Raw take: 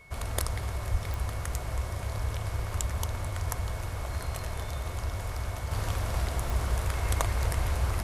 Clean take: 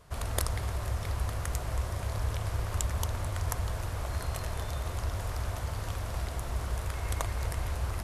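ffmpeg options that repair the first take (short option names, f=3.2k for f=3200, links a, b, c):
-filter_complex "[0:a]adeclick=t=4,bandreject=f=2.2k:w=30,asplit=3[a][b][c];[a]afade=t=out:st=0.91:d=0.02[d];[b]highpass=f=140:w=0.5412,highpass=f=140:w=1.3066,afade=t=in:st=0.91:d=0.02,afade=t=out:st=1.03:d=0.02[e];[c]afade=t=in:st=1.03:d=0.02[f];[d][e][f]amix=inputs=3:normalize=0,asetnsamples=n=441:p=0,asendcmd='5.71 volume volume -4.5dB',volume=0dB"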